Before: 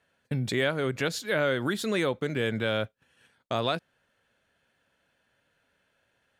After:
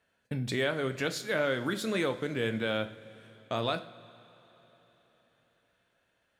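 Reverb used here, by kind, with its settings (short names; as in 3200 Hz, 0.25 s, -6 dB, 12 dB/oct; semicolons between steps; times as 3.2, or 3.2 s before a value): two-slope reverb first 0.44 s, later 4.2 s, from -18 dB, DRR 7.5 dB; gain -3.5 dB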